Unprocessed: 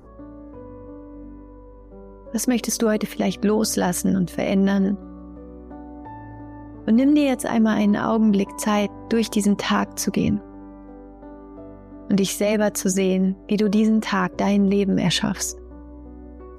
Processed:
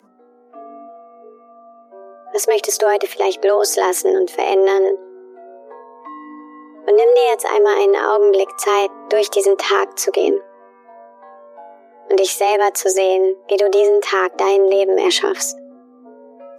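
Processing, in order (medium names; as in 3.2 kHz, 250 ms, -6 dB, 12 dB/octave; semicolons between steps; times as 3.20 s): spectral noise reduction 16 dB; frequency shift +190 Hz; trim +5 dB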